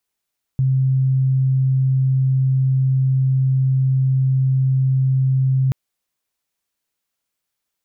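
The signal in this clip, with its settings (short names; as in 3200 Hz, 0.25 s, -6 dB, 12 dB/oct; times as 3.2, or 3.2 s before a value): tone sine 132 Hz -13.5 dBFS 5.13 s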